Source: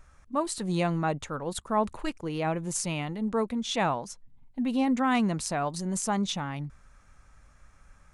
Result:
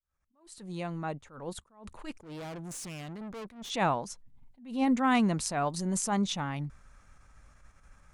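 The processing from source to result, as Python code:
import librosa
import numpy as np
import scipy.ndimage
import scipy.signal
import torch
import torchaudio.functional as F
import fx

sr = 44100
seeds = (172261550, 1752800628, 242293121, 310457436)

y = fx.fade_in_head(x, sr, length_s=2.48)
y = fx.tube_stage(y, sr, drive_db=39.0, bias=0.5, at=(2.19, 3.7))
y = fx.attack_slew(y, sr, db_per_s=130.0)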